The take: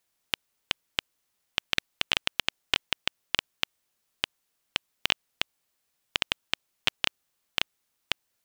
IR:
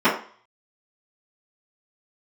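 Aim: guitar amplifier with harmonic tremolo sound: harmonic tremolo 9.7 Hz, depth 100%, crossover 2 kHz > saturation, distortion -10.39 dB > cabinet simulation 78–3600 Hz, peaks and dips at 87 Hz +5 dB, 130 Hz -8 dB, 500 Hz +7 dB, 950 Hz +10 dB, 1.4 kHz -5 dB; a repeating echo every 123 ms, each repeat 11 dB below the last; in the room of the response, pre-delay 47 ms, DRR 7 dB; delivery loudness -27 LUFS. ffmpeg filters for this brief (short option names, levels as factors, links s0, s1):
-filter_complex "[0:a]aecho=1:1:123|246|369:0.282|0.0789|0.0221,asplit=2[s0][s1];[1:a]atrim=start_sample=2205,adelay=47[s2];[s1][s2]afir=irnorm=-1:irlink=0,volume=0.0376[s3];[s0][s3]amix=inputs=2:normalize=0,acrossover=split=2000[s4][s5];[s4]aeval=exprs='val(0)*(1-1/2+1/2*cos(2*PI*9.7*n/s))':c=same[s6];[s5]aeval=exprs='val(0)*(1-1/2-1/2*cos(2*PI*9.7*n/s))':c=same[s7];[s6][s7]amix=inputs=2:normalize=0,asoftclip=threshold=0.158,highpass=78,equalizer=f=87:t=q:w=4:g=5,equalizer=f=130:t=q:w=4:g=-8,equalizer=f=500:t=q:w=4:g=7,equalizer=f=950:t=q:w=4:g=10,equalizer=f=1400:t=q:w=4:g=-5,lowpass=f=3600:w=0.5412,lowpass=f=3600:w=1.3066,volume=4.47"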